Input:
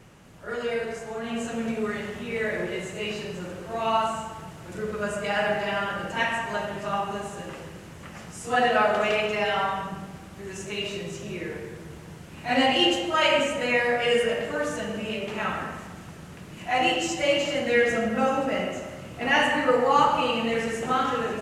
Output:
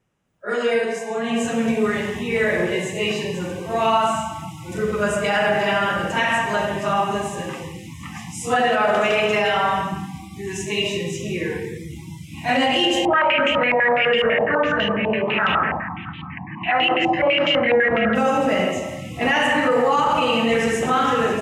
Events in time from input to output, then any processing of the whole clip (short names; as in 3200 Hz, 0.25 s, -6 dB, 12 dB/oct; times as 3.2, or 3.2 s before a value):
13.05–18.15 stepped low-pass 12 Hz 850–3100 Hz
whole clip: spectral noise reduction 29 dB; notch 4400 Hz, Q 9.1; limiter -18.5 dBFS; gain +8.5 dB